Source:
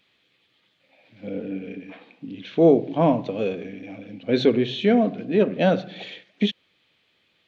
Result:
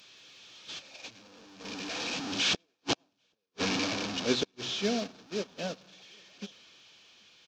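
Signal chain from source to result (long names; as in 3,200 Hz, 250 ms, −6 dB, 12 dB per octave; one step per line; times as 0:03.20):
linear delta modulator 32 kbit/s, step −19.5 dBFS
source passing by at 0:03.21, 5 m/s, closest 2.3 metres
high-pass filter 110 Hz 6 dB per octave
high-shelf EQ 3,100 Hz +11 dB
notch filter 2,000 Hz, Q 7.5
in parallel at +0.5 dB: output level in coarse steps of 12 dB
on the sum: surface crackle 370 per second −46 dBFS
gate with flip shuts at −12 dBFS, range −32 dB
single-tap delay 788 ms −19 dB
on a send at −19.5 dB: convolution reverb RT60 0.55 s, pre-delay 74 ms
on the sum: expander for the loud parts 2.5 to 1, over −46 dBFS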